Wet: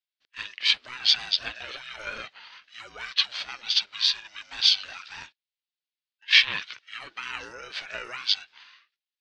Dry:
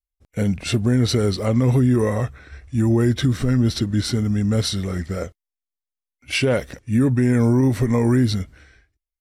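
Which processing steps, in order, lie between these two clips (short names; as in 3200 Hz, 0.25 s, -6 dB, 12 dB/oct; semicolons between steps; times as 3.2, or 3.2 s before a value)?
Chebyshev band-pass 880–4300 Hz, order 3; resonant high shelf 2000 Hz +11 dB, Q 1.5; ring modulator with a swept carrier 490 Hz, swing 20%, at 0.83 Hz; gain -1 dB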